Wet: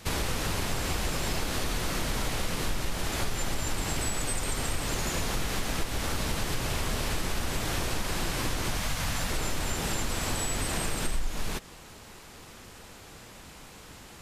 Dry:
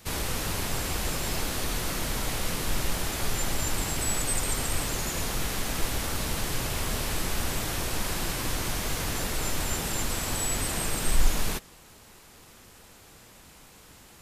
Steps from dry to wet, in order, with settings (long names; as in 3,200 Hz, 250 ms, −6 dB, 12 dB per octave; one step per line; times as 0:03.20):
0:08.77–0:09.30: parametric band 380 Hz −14.5 dB 0.58 octaves
downward compressor 6 to 1, threshold −30 dBFS, peak gain reduction 15 dB
high-shelf EQ 10,000 Hz −9.5 dB
level +5 dB